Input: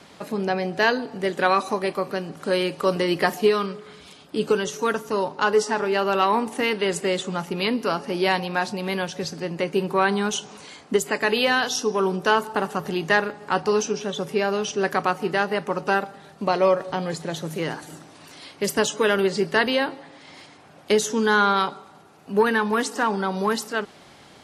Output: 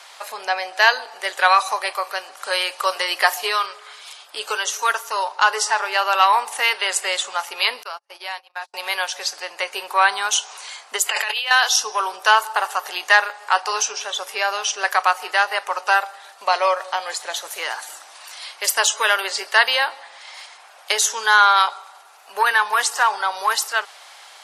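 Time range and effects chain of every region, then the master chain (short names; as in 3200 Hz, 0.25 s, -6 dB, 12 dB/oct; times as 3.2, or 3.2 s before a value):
7.83–8.74 gate -26 dBFS, range -43 dB + compressor 2:1, threshold -40 dBFS
11.09–11.51 bell 2900 Hz +9 dB 0.63 oct + negative-ratio compressor -29 dBFS
whole clip: HPF 730 Hz 24 dB/oct; high shelf 5300 Hz +5 dB; gain +6.5 dB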